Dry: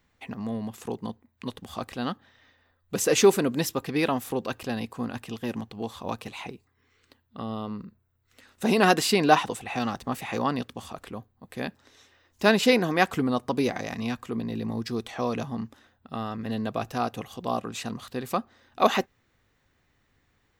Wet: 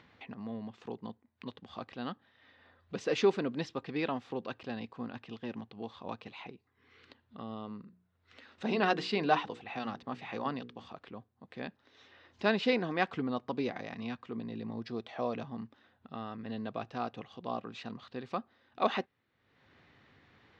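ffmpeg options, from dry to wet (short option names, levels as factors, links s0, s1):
-filter_complex "[0:a]asettb=1/sr,asplit=3[s0][s1][s2];[s0]atrim=end=7.824[s3];[s1]atrim=start=7.82:end=10.89,asetpts=PTS-STARTPTS,afade=t=in:d=0.004:c=qsin,afade=t=out:st=3.066:d=0.004:c=qsin,bandreject=f=60:t=h:w=6,bandreject=f=120:t=h:w=6,bandreject=f=180:t=h:w=6,bandreject=f=240:t=h:w=6,bandreject=f=300:t=h:w=6,bandreject=f=360:t=h:w=6,bandreject=f=420:t=h:w=6,bandreject=f=480:t=h:w=6[s4];[s2]atrim=start=10.886[s5];[s3][s4]acrossfade=d=0.004:c1=hsin:c2=qsin[s6];[s6][s5]acrossfade=d=0.004:c1=qsin:c2=hsin,asettb=1/sr,asplit=3[s7][s8][s9];[s7]atrim=end=14.784[s10];[s8]atrim=start=14.78:end=15.37,asetpts=PTS-STARTPTS,afade=t=in:d=0.004:c=qsin,afade=t=out:st=0.586:d=0.004:c=qsin,equalizer=f=630:w=2.7:g=7[s11];[s9]atrim=start=15.366[s12];[s10][s11]acrossfade=d=0.004:c1=hsin:c2=qsin[s13];[s13][s12]acrossfade=d=0.004:c1=qsin:c2=hsin,lowpass=f=4400:w=0.5412,lowpass=f=4400:w=1.3066,acompressor=mode=upward:threshold=0.0141:ratio=2.5,highpass=110,volume=0.376"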